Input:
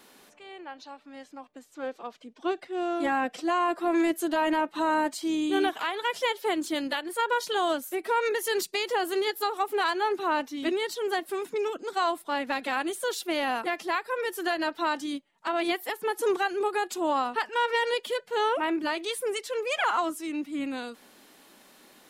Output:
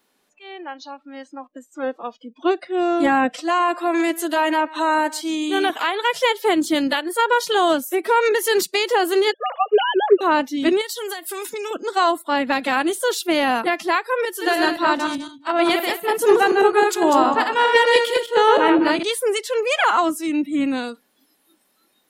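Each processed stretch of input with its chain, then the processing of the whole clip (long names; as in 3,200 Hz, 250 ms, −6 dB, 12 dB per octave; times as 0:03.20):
0:03.33–0:05.70: high-pass filter 630 Hz 6 dB per octave + single-tap delay 134 ms −19.5 dB
0:09.32–0:10.21: three sine waves on the formant tracks + parametric band 2,900 Hz +9.5 dB 0.23 octaves
0:10.81–0:11.71: spectral tilt +3 dB per octave + downward compressor 16 to 1, threshold −33 dBFS
0:14.25–0:19.03: feedback delay that plays each chunk backwards 103 ms, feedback 49%, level −3 dB + multiband upward and downward expander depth 70%
whole clip: noise reduction from a noise print of the clip's start 20 dB; dynamic equaliser 180 Hz, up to +5 dB, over −41 dBFS, Q 0.92; level +8.5 dB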